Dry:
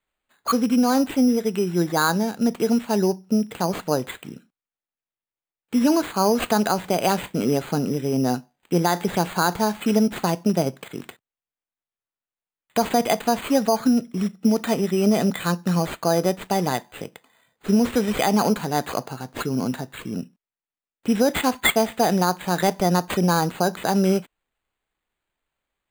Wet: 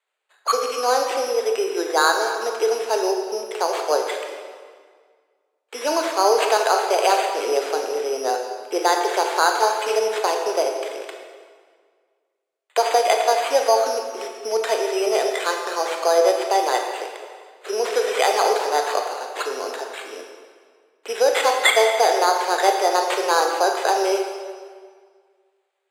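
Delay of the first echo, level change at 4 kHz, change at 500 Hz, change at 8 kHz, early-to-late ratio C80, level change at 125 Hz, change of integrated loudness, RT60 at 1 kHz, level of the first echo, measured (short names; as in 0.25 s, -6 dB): none, +4.5 dB, +4.5 dB, +3.0 dB, 5.5 dB, under -40 dB, +1.5 dB, 1.8 s, none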